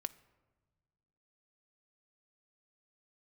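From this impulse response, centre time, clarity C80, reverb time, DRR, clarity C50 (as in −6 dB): 3 ms, 21.0 dB, 1.4 s, 12.5 dB, 19.0 dB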